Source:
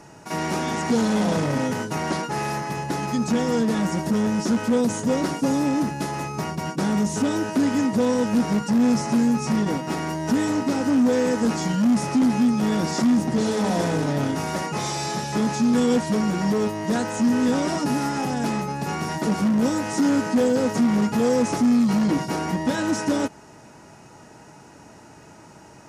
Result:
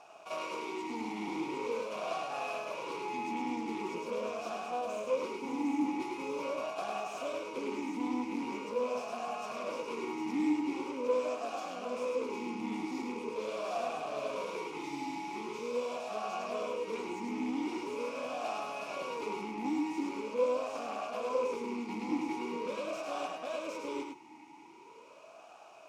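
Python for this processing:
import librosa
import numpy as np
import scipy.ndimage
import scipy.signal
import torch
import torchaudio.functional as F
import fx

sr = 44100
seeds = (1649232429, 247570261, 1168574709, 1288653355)

p1 = fx.tilt_eq(x, sr, slope=3.0)
p2 = np.maximum(p1, 0.0)
p3 = p2 + fx.echo_single(p2, sr, ms=760, db=-3.5, dry=0)
p4 = fx.rider(p3, sr, range_db=10, speed_s=0.5)
p5 = p4 + 10.0 ** (-4.5 / 20.0) * np.pad(p4, (int(104 * sr / 1000.0), 0))[:len(p4)]
p6 = fx.vowel_sweep(p5, sr, vowels='a-u', hz=0.43)
y = p6 * librosa.db_to_amplitude(3.5)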